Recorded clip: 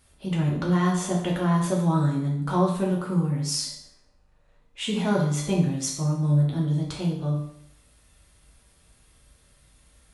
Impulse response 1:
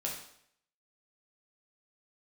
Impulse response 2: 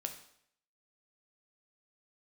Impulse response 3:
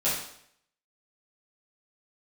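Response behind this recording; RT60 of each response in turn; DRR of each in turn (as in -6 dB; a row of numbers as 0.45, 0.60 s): 1; 0.70, 0.70, 0.70 s; -3.0, 4.5, -12.0 dB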